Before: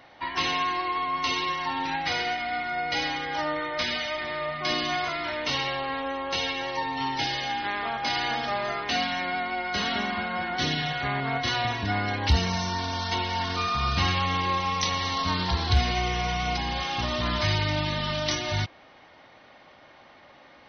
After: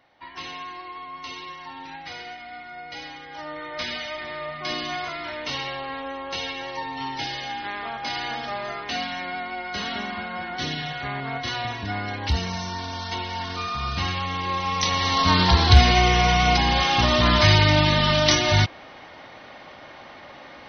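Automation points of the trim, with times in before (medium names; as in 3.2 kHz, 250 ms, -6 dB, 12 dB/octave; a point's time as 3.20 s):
3.29 s -9.5 dB
3.82 s -2 dB
14.36 s -2 dB
15.38 s +9 dB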